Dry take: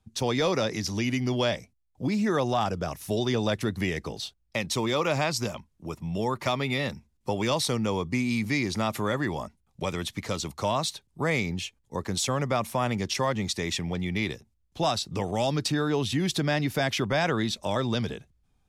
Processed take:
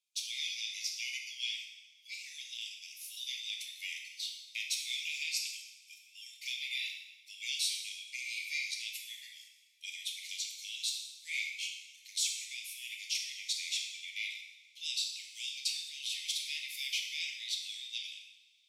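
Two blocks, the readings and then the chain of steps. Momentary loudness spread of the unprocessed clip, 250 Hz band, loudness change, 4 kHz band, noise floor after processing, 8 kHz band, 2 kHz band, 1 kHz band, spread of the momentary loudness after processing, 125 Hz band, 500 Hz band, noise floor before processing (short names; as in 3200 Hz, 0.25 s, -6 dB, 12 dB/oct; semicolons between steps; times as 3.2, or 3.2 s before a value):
8 LU, under -40 dB, -9.0 dB, -2.0 dB, -62 dBFS, -2.0 dB, -7.0 dB, under -40 dB, 12 LU, under -40 dB, under -40 dB, -71 dBFS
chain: steep high-pass 2200 Hz 96 dB/oct; two-slope reverb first 0.93 s, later 3.3 s, from -22 dB, DRR 0 dB; gain -5 dB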